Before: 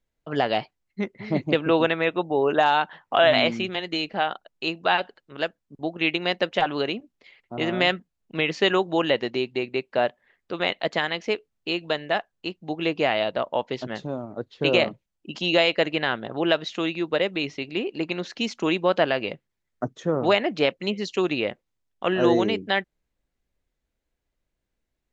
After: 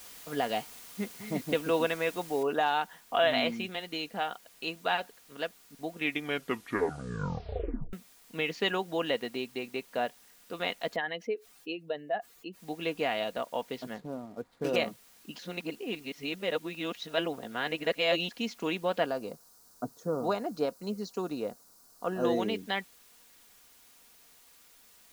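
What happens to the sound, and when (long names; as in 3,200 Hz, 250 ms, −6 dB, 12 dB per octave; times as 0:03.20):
0:02.43: noise floor change −41 dB −51 dB
0:05.93: tape stop 2.00 s
0:10.96–0:12.59: expanding power law on the bin magnitudes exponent 1.8
0:13.94–0:14.76: running median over 15 samples
0:15.39–0:18.31: reverse
0:19.06–0:22.25: flat-topped bell 2,500 Hz −15.5 dB 1.2 octaves
whole clip: comb filter 4.2 ms, depth 39%; level −8.5 dB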